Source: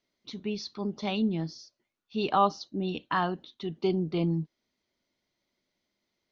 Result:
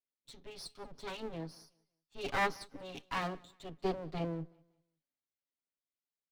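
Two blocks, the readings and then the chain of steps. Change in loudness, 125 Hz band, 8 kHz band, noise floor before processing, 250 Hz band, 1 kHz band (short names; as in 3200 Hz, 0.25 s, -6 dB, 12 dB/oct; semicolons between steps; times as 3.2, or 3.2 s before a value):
-9.0 dB, -11.5 dB, n/a, -83 dBFS, -13.5 dB, -9.5 dB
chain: minimum comb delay 7.2 ms; feedback echo 0.187 s, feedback 42%, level -23.5 dB; three-band expander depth 40%; gain -6.5 dB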